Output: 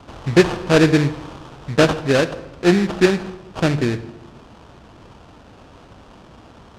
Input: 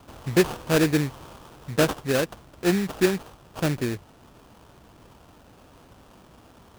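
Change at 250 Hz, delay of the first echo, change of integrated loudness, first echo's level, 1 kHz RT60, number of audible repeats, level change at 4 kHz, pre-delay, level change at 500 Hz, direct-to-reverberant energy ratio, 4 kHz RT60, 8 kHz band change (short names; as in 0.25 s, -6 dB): +7.0 dB, none, +7.0 dB, none, 0.95 s, none, +6.5 dB, 9 ms, +7.0 dB, 12.0 dB, 0.75 s, +1.0 dB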